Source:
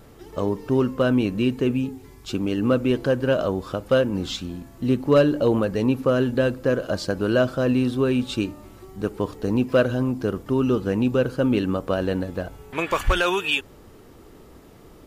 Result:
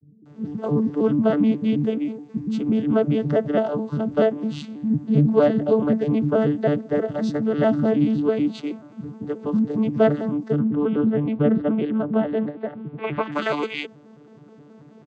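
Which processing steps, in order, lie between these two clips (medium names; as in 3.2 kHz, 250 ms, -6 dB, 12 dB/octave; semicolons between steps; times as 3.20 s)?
vocoder on a broken chord bare fifth, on D3, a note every 107 ms; 10.35–13.07 s: low-pass 3.5 kHz 24 dB/octave; bands offset in time lows, highs 250 ms, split 260 Hz; trim +3.5 dB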